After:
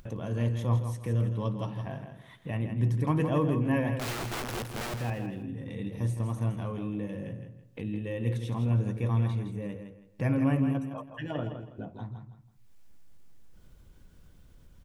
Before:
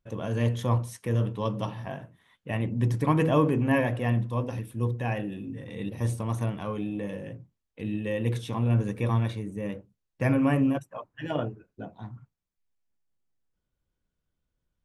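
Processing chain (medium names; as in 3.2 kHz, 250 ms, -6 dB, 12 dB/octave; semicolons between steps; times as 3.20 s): bass shelf 260 Hz +6.5 dB; 3.97–4.94 s: integer overflow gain 24.5 dB; upward compressor, threshold -25 dBFS; feedback delay 163 ms, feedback 28%, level -8 dB; trim -7 dB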